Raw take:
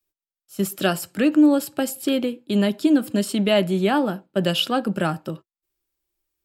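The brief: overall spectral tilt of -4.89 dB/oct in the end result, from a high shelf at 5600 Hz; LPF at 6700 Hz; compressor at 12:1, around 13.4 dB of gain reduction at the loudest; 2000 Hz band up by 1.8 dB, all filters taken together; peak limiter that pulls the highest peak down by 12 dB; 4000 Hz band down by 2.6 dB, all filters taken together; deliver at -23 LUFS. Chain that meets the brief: LPF 6700 Hz; bell 2000 Hz +4.5 dB; bell 4000 Hz -4 dB; high shelf 5600 Hz -7.5 dB; compressor 12:1, threshold -25 dBFS; gain +11 dB; limiter -13 dBFS

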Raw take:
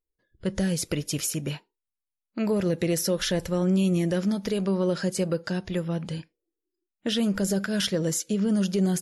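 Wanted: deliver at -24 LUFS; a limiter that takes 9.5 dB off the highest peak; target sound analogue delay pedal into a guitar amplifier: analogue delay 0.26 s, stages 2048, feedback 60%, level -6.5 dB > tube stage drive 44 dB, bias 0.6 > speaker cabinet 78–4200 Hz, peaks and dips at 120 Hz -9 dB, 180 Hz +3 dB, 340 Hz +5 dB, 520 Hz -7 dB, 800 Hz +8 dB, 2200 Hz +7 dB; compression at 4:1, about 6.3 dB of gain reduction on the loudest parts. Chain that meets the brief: compressor 4:1, threshold -28 dBFS; limiter -27.5 dBFS; analogue delay 0.26 s, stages 2048, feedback 60%, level -6.5 dB; tube stage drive 44 dB, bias 0.6; speaker cabinet 78–4200 Hz, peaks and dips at 120 Hz -9 dB, 180 Hz +3 dB, 340 Hz +5 dB, 520 Hz -7 dB, 800 Hz +8 dB, 2200 Hz +7 dB; gain +21.5 dB

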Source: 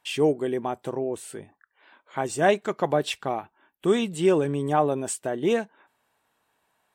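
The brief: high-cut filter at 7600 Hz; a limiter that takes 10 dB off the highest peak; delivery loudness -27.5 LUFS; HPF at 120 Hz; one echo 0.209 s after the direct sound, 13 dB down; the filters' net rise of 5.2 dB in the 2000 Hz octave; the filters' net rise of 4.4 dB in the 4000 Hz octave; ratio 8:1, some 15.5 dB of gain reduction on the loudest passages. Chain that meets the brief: HPF 120 Hz; LPF 7600 Hz; bell 2000 Hz +6 dB; bell 4000 Hz +3.5 dB; compressor 8:1, threshold -31 dBFS; limiter -25.5 dBFS; echo 0.209 s -13 dB; gain +10 dB

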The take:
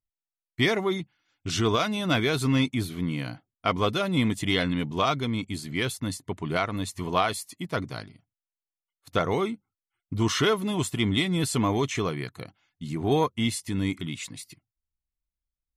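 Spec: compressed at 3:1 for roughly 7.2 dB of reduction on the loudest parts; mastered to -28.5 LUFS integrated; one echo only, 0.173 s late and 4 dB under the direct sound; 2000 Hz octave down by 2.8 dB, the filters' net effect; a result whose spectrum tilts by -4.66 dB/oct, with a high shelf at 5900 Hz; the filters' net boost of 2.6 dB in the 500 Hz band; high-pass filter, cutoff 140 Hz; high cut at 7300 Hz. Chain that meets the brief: HPF 140 Hz; LPF 7300 Hz; bell 500 Hz +3.5 dB; bell 2000 Hz -3 dB; high shelf 5900 Hz -6 dB; compressor 3:1, threshold -27 dBFS; echo 0.173 s -4 dB; gain +2 dB

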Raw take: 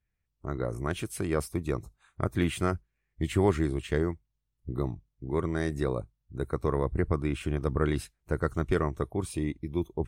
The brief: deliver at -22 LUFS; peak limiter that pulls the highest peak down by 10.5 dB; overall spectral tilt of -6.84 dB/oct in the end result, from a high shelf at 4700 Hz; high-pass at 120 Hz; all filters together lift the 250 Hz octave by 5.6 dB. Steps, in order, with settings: HPF 120 Hz; bell 250 Hz +8.5 dB; high shelf 4700 Hz -7.5 dB; gain +11 dB; limiter -9 dBFS

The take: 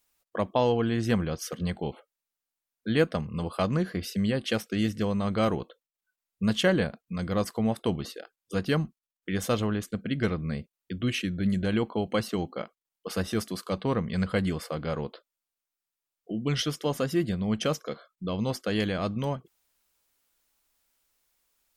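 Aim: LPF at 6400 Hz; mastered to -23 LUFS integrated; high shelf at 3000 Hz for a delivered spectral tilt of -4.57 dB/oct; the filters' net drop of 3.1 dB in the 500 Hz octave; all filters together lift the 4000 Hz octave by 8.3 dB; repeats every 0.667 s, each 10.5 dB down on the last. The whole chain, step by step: LPF 6400 Hz; bell 500 Hz -4 dB; high shelf 3000 Hz +7.5 dB; bell 4000 Hz +6 dB; feedback echo 0.667 s, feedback 30%, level -10.5 dB; gain +5.5 dB

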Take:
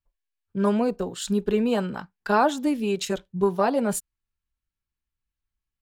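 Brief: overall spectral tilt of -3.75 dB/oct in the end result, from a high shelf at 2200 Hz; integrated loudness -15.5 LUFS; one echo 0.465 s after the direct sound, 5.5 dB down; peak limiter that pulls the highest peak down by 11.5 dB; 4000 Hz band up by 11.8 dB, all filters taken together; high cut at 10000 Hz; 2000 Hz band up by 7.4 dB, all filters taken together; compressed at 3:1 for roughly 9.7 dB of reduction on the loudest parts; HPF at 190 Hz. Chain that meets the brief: HPF 190 Hz; LPF 10000 Hz; bell 2000 Hz +6.5 dB; high shelf 2200 Hz +5.5 dB; bell 4000 Hz +7.5 dB; compressor 3:1, threshold -26 dBFS; limiter -25 dBFS; echo 0.465 s -5.5 dB; gain +18.5 dB

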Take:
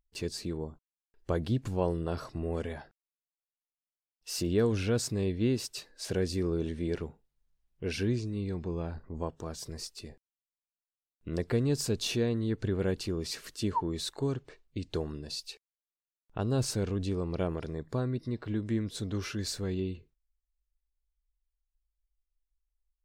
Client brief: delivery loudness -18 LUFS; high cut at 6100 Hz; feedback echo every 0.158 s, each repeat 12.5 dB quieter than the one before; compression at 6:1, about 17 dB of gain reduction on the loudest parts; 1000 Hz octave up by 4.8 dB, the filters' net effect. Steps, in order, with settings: LPF 6100 Hz; bell 1000 Hz +5.5 dB; compressor 6:1, threshold -40 dBFS; feedback echo 0.158 s, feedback 24%, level -12.5 dB; gain +26 dB

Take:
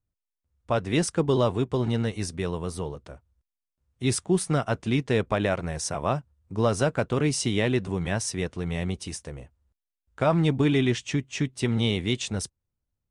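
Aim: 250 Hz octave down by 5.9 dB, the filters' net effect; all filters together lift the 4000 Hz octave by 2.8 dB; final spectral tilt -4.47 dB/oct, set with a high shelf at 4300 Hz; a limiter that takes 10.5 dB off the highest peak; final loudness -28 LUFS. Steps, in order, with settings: bell 250 Hz -8.5 dB; bell 4000 Hz +5.5 dB; high shelf 4300 Hz -3.5 dB; gain +4.5 dB; limiter -17.5 dBFS

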